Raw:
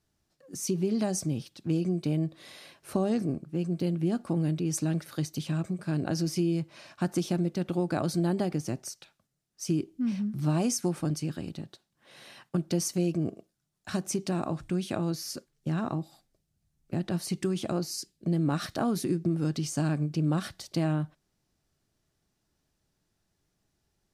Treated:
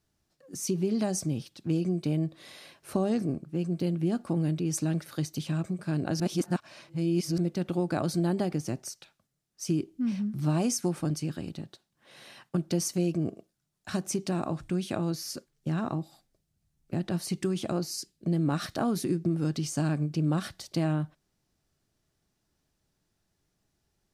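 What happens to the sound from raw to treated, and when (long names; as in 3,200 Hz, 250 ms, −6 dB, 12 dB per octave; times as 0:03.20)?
0:06.20–0:07.38: reverse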